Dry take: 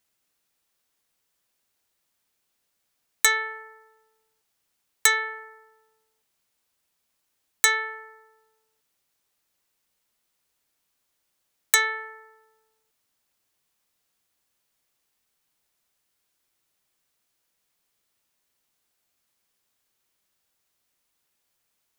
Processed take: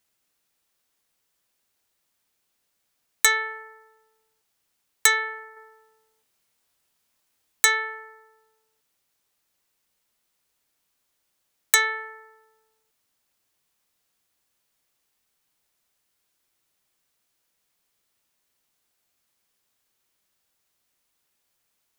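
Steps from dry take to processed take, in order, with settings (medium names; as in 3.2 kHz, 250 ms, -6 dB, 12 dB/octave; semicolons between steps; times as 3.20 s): 5.54–7.66 s: doubling 25 ms -3 dB; trim +1 dB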